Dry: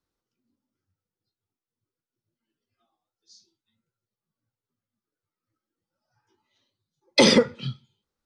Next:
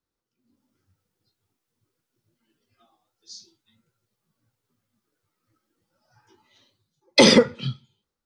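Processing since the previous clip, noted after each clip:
automatic gain control gain up to 14.5 dB
level −3 dB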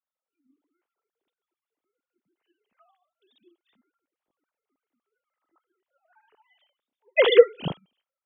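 three sine waves on the formant tracks
level −1.5 dB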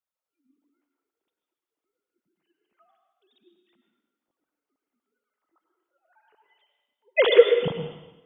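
dense smooth reverb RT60 0.99 s, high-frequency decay 1×, pre-delay 85 ms, DRR 5 dB
level −1 dB

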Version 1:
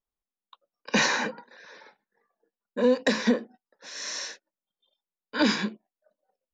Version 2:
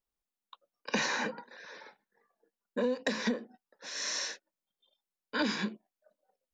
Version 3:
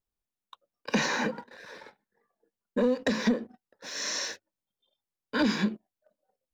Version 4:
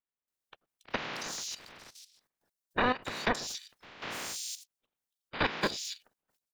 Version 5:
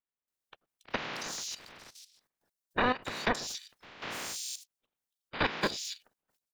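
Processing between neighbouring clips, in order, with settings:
downward compressor 4 to 1, threshold −29 dBFS, peak gain reduction 10.5 dB
low-shelf EQ 460 Hz +7 dB; leveller curve on the samples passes 1; parametric band 99 Hz +10.5 dB 0.41 octaves; level −1.5 dB
ceiling on every frequency bin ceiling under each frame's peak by 29 dB; multiband delay without the direct sound lows, highs 280 ms, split 3,500 Hz; output level in coarse steps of 13 dB
buffer that repeats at 0:04.44, samples 1,024, times 4

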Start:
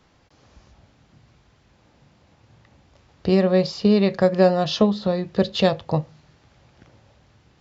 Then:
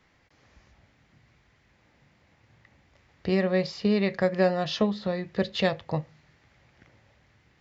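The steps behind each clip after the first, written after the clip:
parametric band 2,000 Hz +10 dB 0.64 octaves
level −7 dB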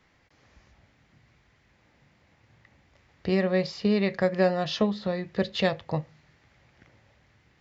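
no processing that can be heard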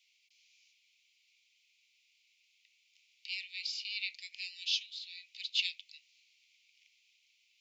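Butterworth high-pass 2,300 Hz 96 dB per octave
level +1.5 dB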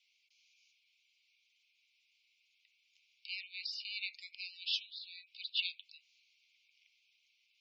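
gate on every frequency bin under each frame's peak −15 dB strong
level −2.5 dB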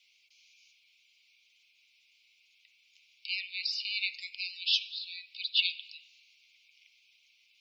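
rectangular room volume 2,500 cubic metres, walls mixed, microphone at 0.38 metres
level +8 dB

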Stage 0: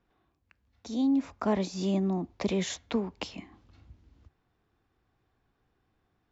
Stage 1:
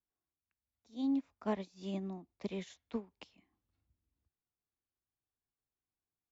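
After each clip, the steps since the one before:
dynamic equaliser 2,900 Hz, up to +4 dB, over −53 dBFS, Q 0.74
expander for the loud parts 2.5 to 1, over −36 dBFS
level −6.5 dB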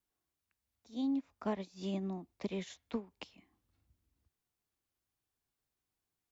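downward compressor 2 to 1, threshold −42 dBFS, peak gain reduction 7.5 dB
level +5.5 dB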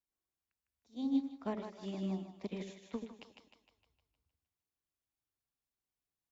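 echo with a time of its own for lows and highs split 550 Hz, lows 83 ms, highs 154 ms, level −4 dB
expander for the loud parts 1.5 to 1, over −45 dBFS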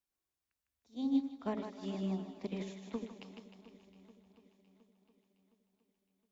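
feedback echo with a long and a short gap by turns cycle 715 ms, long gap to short 1.5 to 1, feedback 45%, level −16 dB
level +1 dB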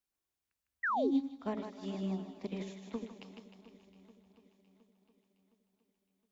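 sound drawn into the spectrogram fall, 0:00.83–0:01.11, 310–2,000 Hz −32 dBFS

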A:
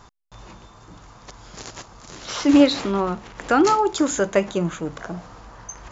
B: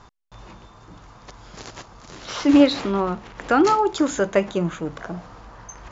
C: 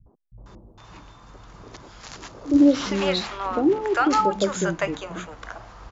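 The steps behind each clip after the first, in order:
Bessel low-pass filter 5,200 Hz
three-band delay without the direct sound lows, mids, highs 60/460 ms, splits 180/610 Hz

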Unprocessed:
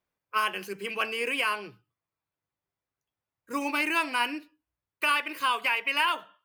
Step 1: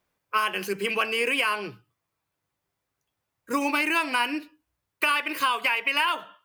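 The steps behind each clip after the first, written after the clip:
downward compressor 3 to 1, threshold −31 dBFS, peak gain reduction 8 dB
level +8.5 dB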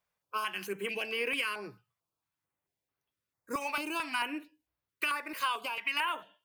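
low-shelf EQ 130 Hz −5.5 dB
notch on a step sequencer 4.5 Hz 310–7,600 Hz
level −7 dB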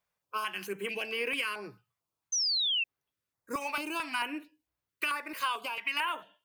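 sound drawn into the spectrogram fall, 0:02.32–0:02.84, 2,600–6,300 Hz −29 dBFS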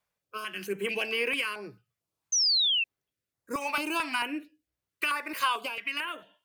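rotating-speaker cabinet horn 0.7 Hz
level +5 dB

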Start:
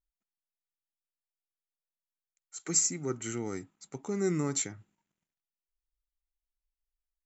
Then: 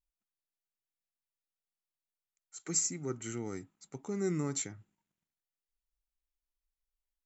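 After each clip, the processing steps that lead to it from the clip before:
low-shelf EQ 200 Hz +3.5 dB
level −4.5 dB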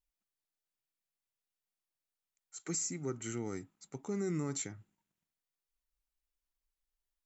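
brickwall limiter −27 dBFS, peak gain reduction 8.5 dB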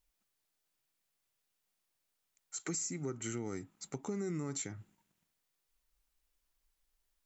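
downward compressor 3 to 1, threshold −47 dBFS, peak gain reduction 11.5 dB
level +8.5 dB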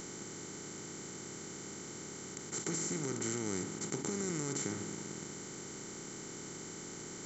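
compressor on every frequency bin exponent 0.2
level −4.5 dB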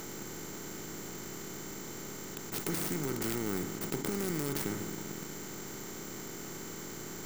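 stylus tracing distortion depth 0.27 ms
level +3 dB

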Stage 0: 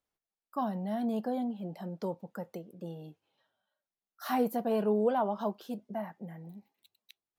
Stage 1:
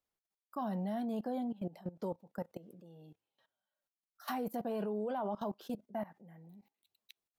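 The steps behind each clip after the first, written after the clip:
output level in coarse steps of 19 dB
level +2 dB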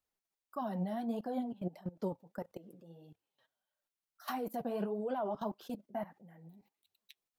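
flanger 1.6 Hz, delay 0.6 ms, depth 7.8 ms, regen +40%
level +4 dB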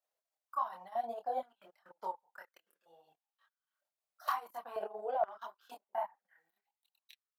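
multi-voice chorus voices 4, 0.63 Hz, delay 26 ms, depth 1.4 ms
transient designer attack +3 dB, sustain −11 dB
high-pass on a step sequencer 2.1 Hz 610–1,600 Hz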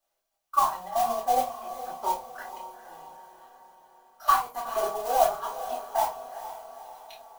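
noise that follows the level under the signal 13 dB
feedback delay with all-pass diffusion 458 ms, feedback 53%, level −12 dB
convolution reverb RT60 0.25 s, pre-delay 3 ms, DRR −3.5 dB
level +4 dB

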